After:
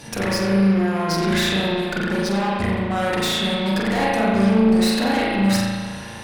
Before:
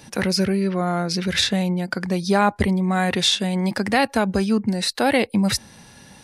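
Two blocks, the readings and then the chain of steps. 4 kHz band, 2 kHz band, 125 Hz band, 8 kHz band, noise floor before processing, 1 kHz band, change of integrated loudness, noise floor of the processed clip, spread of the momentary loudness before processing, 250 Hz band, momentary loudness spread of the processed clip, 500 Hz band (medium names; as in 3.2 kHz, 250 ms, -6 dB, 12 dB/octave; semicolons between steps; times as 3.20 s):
-1.5 dB, +1.0 dB, +1.0 dB, -2.5 dB, -47 dBFS, 0.0 dB, +1.0 dB, -34 dBFS, 4 LU, +2.5 dB, 6 LU, +1.5 dB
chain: compression 6:1, threshold -24 dBFS, peak gain reduction 12 dB; on a send: flutter echo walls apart 7.7 m, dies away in 0.43 s; on the sum: valve stage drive 29 dB, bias 0.55; spring tank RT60 1.7 s, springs 36 ms, chirp 75 ms, DRR -5.5 dB; trim +7.5 dB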